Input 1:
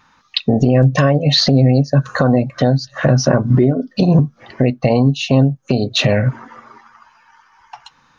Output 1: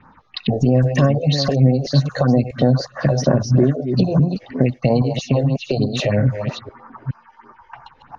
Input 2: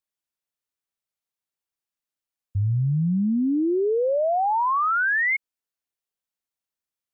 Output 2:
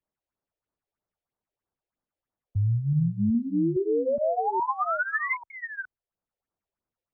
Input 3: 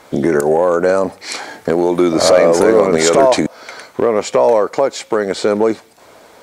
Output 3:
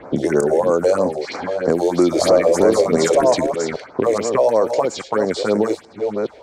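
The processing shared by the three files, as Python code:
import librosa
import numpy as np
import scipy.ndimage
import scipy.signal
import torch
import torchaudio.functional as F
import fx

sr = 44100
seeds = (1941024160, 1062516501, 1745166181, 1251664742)

y = fx.reverse_delay(x, sr, ms=418, wet_db=-8.5)
y = fx.env_lowpass(y, sr, base_hz=1400.0, full_db=-10.0)
y = fx.phaser_stages(y, sr, stages=4, low_hz=180.0, high_hz=3400.0, hz=3.1, feedback_pct=20)
y = fx.band_squash(y, sr, depth_pct=40)
y = F.gain(torch.from_numpy(y), -2.0).numpy()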